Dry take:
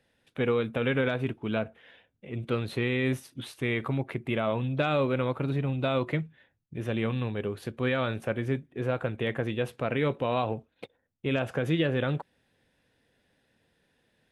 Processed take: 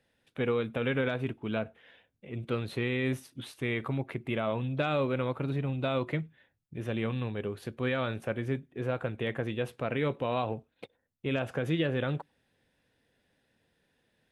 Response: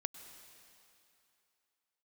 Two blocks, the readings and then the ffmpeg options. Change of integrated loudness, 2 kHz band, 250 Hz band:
-3.0 dB, -3.0 dB, -3.0 dB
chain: -filter_complex "[0:a]asplit=2[a][b];[1:a]atrim=start_sample=2205,afade=t=out:st=0.15:d=0.01,atrim=end_sample=7056[c];[b][c]afir=irnorm=-1:irlink=0,volume=-11.5dB[d];[a][d]amix=inputs=2:normalize=0,volume=-4.5dB"

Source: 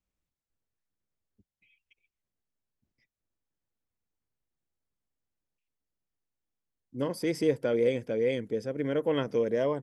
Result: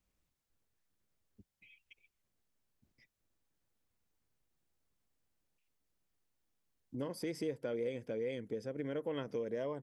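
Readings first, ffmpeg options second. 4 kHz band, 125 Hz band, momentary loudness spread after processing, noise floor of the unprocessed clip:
-10.0 dB, -9.5 dB, 4 LU, under -85 dBFS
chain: -af "acompressor=threshold=-49dB:ratio=2.5,volume=5dB"

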